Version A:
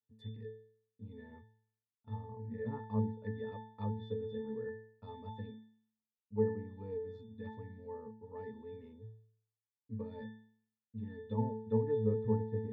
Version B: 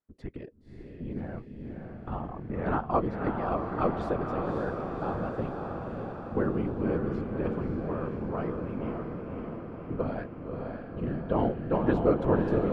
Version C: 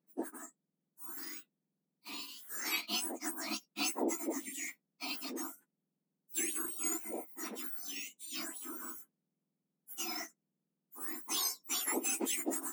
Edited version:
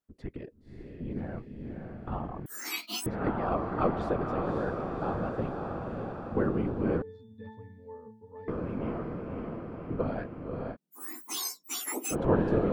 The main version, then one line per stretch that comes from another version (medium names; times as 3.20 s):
B
2.46–3.06 s: from C
7.02–8.48 s: from A
10.74–12.13 s: from C, crossfade 0.06 s